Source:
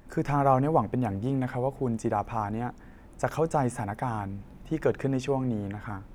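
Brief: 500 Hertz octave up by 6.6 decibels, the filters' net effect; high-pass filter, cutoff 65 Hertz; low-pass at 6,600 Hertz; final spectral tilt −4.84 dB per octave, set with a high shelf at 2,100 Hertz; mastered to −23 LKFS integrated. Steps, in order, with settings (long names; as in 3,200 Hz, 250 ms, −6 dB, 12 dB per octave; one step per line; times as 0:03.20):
high-pass filter 65 Hz
low-pass filter 6,600 Hz
parametric band 500 Hz +7.5 dB
high-shelf EQ 2,100 Hz +6 dB
level +2 dB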